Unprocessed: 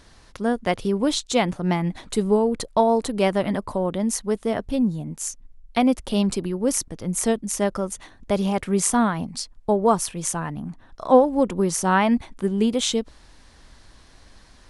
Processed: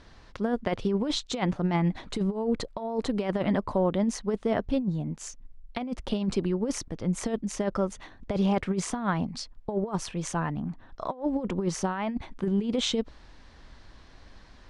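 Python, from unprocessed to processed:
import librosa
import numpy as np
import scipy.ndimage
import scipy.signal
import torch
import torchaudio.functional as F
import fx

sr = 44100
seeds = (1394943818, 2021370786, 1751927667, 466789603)

y = fx.over_compress(x, sr, threshold_db=-22.0, ratio=-0.5)
y = fx.air_absorb(y, sr, metres=120.0)
y = F.gain(torch.from_numpy(y), -3.0).numpy()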